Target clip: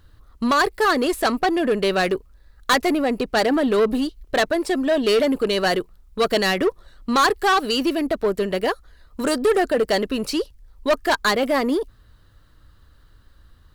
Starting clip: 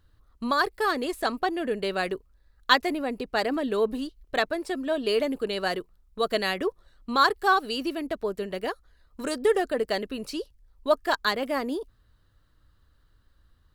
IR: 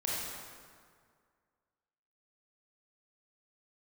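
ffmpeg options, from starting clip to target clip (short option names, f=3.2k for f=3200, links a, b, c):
-af "apsyclip=10.5dB,asoftclip=type=tanh:threshold=-13dB,aeval=exprs='0.224*(cos(1*acos(clip(val(0)/0.224,-1,1)))-cos(1*PI/2))+0.00398*(cos(8*acos(clip(val(0)/0.224,-1,1)))-cos(8*PI/2))':c=same"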